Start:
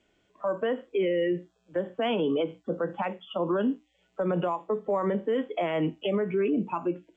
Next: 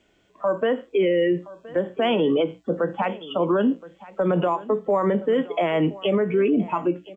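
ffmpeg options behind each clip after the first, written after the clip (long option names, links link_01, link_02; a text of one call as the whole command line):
ffmpeg -i in.wav -af "aecho=1:1:1021:0.112,volume=6dB" out.wav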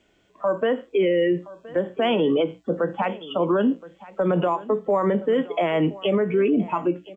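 ffmpeg -i in.wav -af anull out.wav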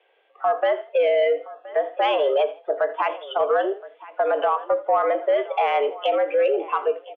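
ffmpeg -i in.wav -filter_complex "[0:a]highpass=frequency=310:width_type=q:width=0.5412,highpass=frequency=310:width_type=q:width=1.307,lowpass=frequency=3100:width_type=q:width=0.5176,lowpass=frequency=3100:width_type=q:width=0.7071,lowpass=frequency=3100:width_type=q:width=1.932,afreqshift=120,acontrast=84,asplit=4[link_01][link_02][link_03][link_04];[link_02]adelay=81,afreqshift=32,volume=-19dB[link_05];[link_03]adelay=162,afreqshift=64,volume=-28.9dB[link_06];[link_04]adelay=243,afreqshift=96,volume=-38.8dB[link_07];[link_01][link_05][link_06][link_07]amix=inputs=4:normalize=0,volume=-5dB" out.wav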